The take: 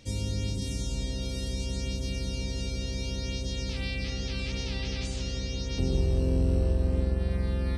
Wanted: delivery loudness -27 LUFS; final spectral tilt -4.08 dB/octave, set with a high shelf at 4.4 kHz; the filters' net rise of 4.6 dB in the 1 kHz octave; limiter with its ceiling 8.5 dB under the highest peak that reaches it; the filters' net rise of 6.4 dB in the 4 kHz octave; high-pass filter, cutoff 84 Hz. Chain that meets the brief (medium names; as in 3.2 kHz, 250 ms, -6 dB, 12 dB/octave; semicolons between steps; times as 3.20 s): high-pass 84 Hz; peaking EQ 1 kHz +5.5 dB; peaking EQ 4 kHz +6 dB; treble shelf 4.4 kHz +3 dB; trim +7.5 dB; peak limiter -17.5 dBFS